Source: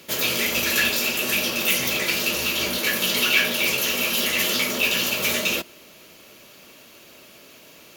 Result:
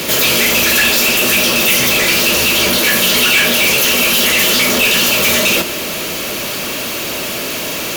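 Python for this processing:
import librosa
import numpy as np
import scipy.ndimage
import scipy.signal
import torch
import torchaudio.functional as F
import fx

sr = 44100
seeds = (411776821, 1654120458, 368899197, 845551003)

y = fx.power_curve(x, sr, exponent=0.35)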